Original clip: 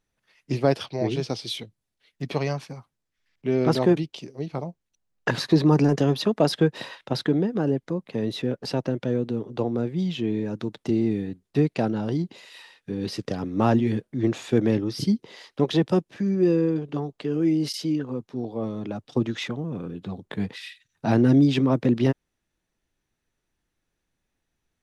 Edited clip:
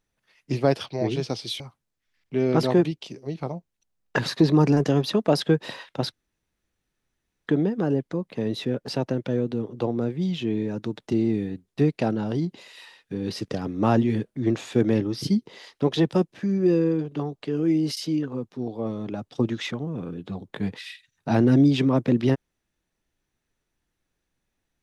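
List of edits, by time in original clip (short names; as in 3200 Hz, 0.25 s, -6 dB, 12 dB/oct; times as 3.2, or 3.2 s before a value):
1.6–2.72 cut
7.24 insert room tone 1.35 s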